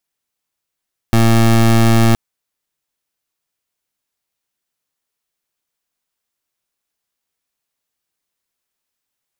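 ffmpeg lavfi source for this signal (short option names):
-f lavfi -i "aevalsrc='0.316*(2*lt(mod(114*t,1),0.23)-1)':d=1.02:s=44100"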